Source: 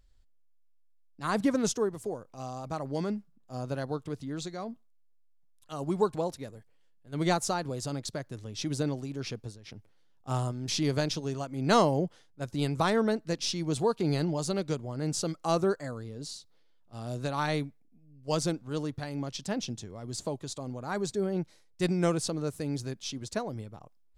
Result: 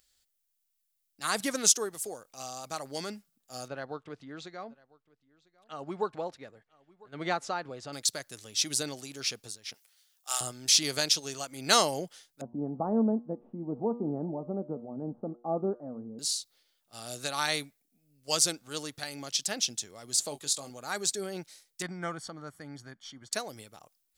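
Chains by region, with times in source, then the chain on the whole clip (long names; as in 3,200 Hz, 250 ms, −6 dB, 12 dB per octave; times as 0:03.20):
0:03.68–0:07.93: low-pass filter 1,900 Hz + single-tap delay 999 ms −24 dB
0:09.74–0:10.41: high-pass filter 870 Hz + high-shelf EQ 3,700 Hz +7 dB
0:12.41–0:16.19: Butterworth low-pass 900 Hz + parametric band 230 Hz +14.5 dB 0.56 octaves + hum removal 119.4 Hz, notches 36
0:20.29–0:20.70: notch filter 5,900 Hz, Q 21 + double-tracking delay 21 ms −8 dB
0:21.82–0:23.33: Savitzky-Golay smoothing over 41 samples + parametric band 440 Hz −10 dB 0.9 octaves
whole clip: spectral tilt +4.5 dB per octave; notch filter 1,000 Hz, Q 9.2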